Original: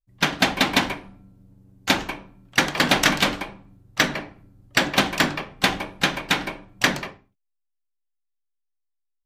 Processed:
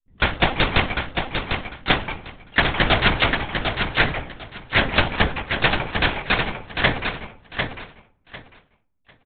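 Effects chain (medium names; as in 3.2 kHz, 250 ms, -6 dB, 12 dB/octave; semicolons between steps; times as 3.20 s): monotone LPC vocoder at 8 kHz 260 Hz; feedback delay 749 ms, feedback 20%, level -6 dB; trim +2 dB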